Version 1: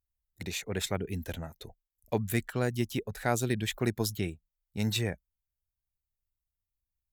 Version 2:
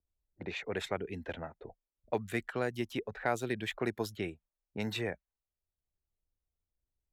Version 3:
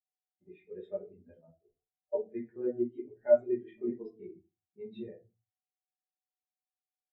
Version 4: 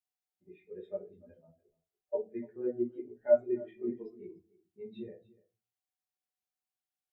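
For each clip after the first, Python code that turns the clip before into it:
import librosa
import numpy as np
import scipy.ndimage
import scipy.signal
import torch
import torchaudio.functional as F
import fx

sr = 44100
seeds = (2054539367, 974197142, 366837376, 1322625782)

y1 = fx.env_lowpass(x, sr, base_hz=430.0, full_db=-28.0)
y1 = fx.bass_treble(y1, sr, bass_db=-11, treble_db=-13)
y1 = fx.band_squash(y1, sr, depth_pct=40)
y2 = y1 + 10.0 ** (-62.0 / 20.0) * np.sin(2.0 * np.pi * 750.0 * np.arange(len(y1)) / sr)
y2 = fx.room_shoebox(y2, sr, seeds[0], volume_m3=100.0, walls='mixed', distance_m=1.3)
y2 = fx.spectral_expand(y2, sr, expansion=2.5)
y3 = y2 + 10.0 ** (-21.5 / 20.0) * np.pad(y2, (int(293 * sr / 1000.0), 0))[:len(y2)]
y3 = y3 * 10.0 ** (-1.0 / 20.0)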